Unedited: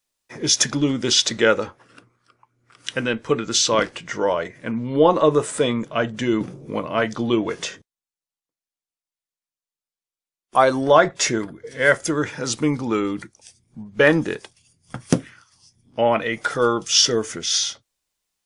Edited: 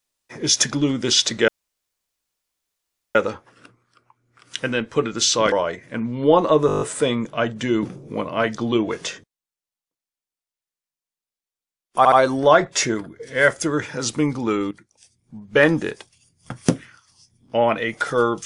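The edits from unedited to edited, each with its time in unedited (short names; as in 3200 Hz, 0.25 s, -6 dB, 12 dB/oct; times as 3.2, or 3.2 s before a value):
1.48 insert room tone 1.67 s
3.85–4.24 cut
5.39 stutter 0.02 s, 8 plays
10.56 stutter 0.07 s, 3 plays
13.15–14.03 fade in, from -15 dB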